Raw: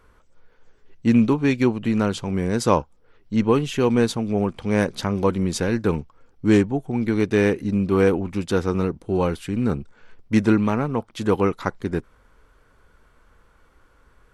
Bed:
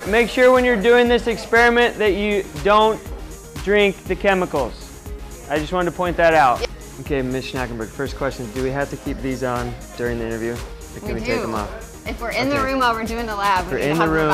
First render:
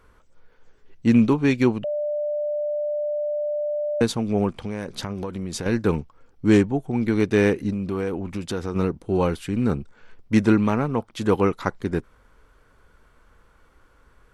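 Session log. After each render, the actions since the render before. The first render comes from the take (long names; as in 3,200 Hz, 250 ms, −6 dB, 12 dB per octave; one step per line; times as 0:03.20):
0:01.84–0:04.01: beep over 593 Hz −22.5 dBFS
0:04.56–0:05.66: downward compressor 16 to 1, threshold −25 dBFS
0:07.70–0:08.76: downward compressor 3 to 1, threshold −25 dBFS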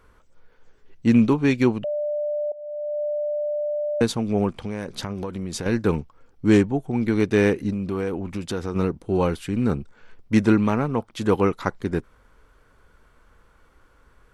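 0:02.52–0:03.02: fade in, from −18 dB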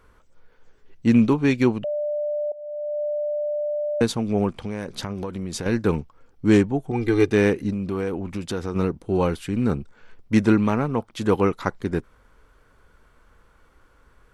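0:06.91–0:07.32: comb filter 2.5 ms, depth 84%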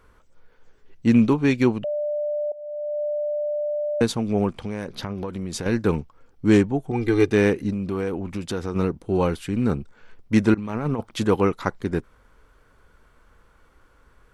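0:04.88–0:05.28: parametric band 8,000 Hz −11 dB
0:10.54–0:11.24: compressor whose output falls as the input rises −25 dBFS, ratio −0.5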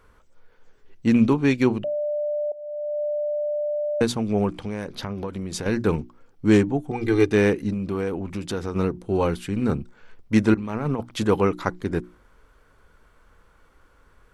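mains-hum notches 60/120/180/240/300/360 Hz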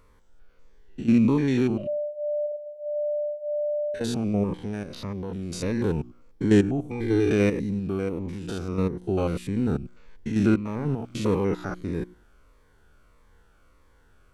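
spectrum averaged block by block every 100 ms
phaser whose notches keep moving one way falling 1.6 Hz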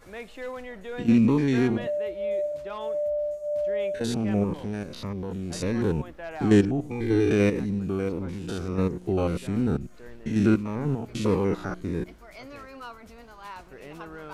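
mix in bed −23.5 dB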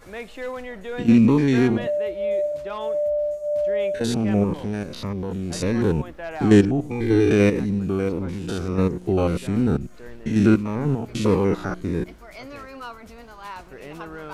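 level +4.5 dB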